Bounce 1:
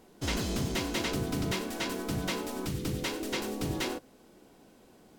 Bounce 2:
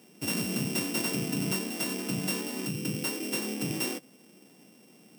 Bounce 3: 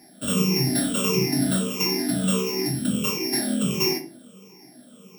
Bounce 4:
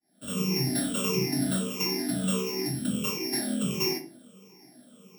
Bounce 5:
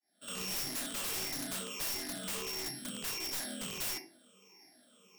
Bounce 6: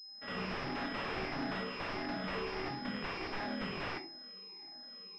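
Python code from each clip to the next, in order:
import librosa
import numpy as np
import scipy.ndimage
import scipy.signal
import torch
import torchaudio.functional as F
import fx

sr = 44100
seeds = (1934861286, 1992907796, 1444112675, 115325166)

y1 = np.r_[np.sort(x[:len(x) // 16 * 16].reshape(-1, 16), axis=1).ravel(), x[len(x) // 16 * 16:]]
y1 = scipy.signal.sosfilt(scipy.signal.butter(4, 160.0, 'highpass', fs=sr, output='sos'), y1)
y1 = fx.bass_treble(y1, sr, bass_db=9, treble_db=8)
y1 = F.gain(torch.from_numpy(y1), -2.0).numpy()
y2 = fx.spec_ripple(y1, sr, per_octave=0.76, drift_hz=-1.5, depth_db=22)
y2 = fx.room_shoebox(y2, sr, seeds[0], volume_m3=200.0, walls='furnished', distance_m=1.3)
y3 = fx.fade_in_head(y2, sr, length_s=0.53)
y3 = F.gain(torch.from_numpy(y3), -5.0).numpy()
y4 = fx.highpass(y3, sr, hz=1400.0, slope=6)
y4 = fx.high_shelf(y4, sr, hz=9200.0, db=-11.0)
y4 = (np.mod(10.0 ** (31.0 / 20.0) * y4 + 1.0, 2.0) - 1.0) / 10.0 ** (31.0 / 20.0)
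y5 = fx.pwm(y4, sr, carrier_hz=5100.0)
y5 = F.gain(torch.from_numpy(y5), 4.5).numpy()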